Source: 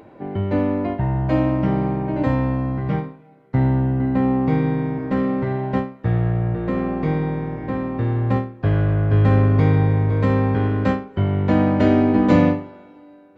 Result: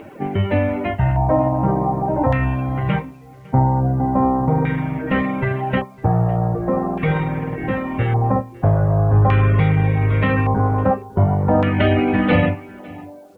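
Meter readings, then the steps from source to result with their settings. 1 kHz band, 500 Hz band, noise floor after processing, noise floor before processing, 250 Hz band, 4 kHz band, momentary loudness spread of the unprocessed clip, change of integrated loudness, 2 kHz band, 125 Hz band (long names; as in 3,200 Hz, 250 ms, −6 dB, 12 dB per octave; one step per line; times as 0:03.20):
+6.0 dB, +2.0 dB, −40 dBFS, −46 dBFS, −1.0 dB, can't be measured, 9 LU, +1.5 dB, +6.0 dB, +1.5 dB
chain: spectral magnitudes quantised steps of 15 dB
low-pass filter 3,700 Hz 24 dB per octave
notch filter 1,000 Hz, Q 25
hum removal 56.47 Hz, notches 2
auto-filter low-pass square 0.43 Hz 880–2,800 Hz
dynamic equaliser 290 Hz, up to −7 dB, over −30 dBFS, Q 0.77
in parallel at +3 dB: brickwall limiter −15 dBFS, peak gain reduction 7 dB
on the sum: reverb reduction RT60 0.65 s
bit reduction 10 bits
on a send: single-tap delay 555 ms −22.5 dB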